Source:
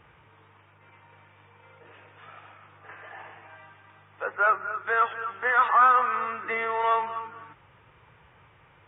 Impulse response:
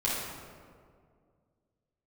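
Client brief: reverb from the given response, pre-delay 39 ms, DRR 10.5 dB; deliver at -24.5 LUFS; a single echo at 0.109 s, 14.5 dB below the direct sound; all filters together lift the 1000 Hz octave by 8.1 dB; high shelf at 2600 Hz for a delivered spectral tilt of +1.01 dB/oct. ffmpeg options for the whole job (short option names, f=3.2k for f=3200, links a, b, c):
-filter_complex "[0:a]equalizer=f=1k:t=o:g=9,highshelf=f=2.6k:g=7.5,aecho=1:1:109:0.188,asplit=2[a][b];[1:a]atrim=start_sample=2205,adelay=39[c];[b][c]afir=irnorm=-1:irlink=0,volume=-19.5dB[d];[a][d]amix=inputs=2:normalize=0,volume=-8.5dB"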